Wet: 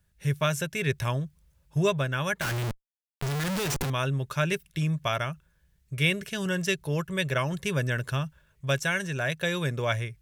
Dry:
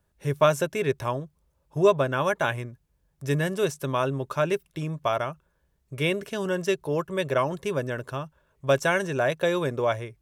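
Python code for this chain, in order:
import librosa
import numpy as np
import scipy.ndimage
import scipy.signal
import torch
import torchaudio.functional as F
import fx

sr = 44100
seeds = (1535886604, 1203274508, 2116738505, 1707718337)

y = fx.band_shelf(x, sr, hz=550.0, db=-10.5, octaves=2.6)
y = fx.schmitt(y, sr, flips_db=-40.5, at=(2.41, 3.9))
y = fx.rider(y, sr, range_db=4, speed_s=0.5)
y = F.gain(torch.from_numpy(y), 3.5).numpy()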